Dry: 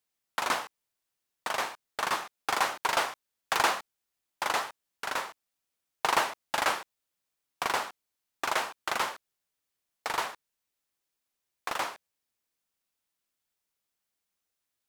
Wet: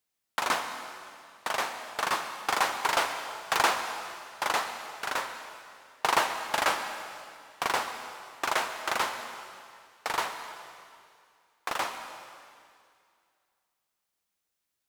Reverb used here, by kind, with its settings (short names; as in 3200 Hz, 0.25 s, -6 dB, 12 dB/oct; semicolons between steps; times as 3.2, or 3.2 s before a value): plate-style reverb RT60 2.3 s, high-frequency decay 1×, pre-delay 0.11 s, DRR 8.5 dB; gain +1 dB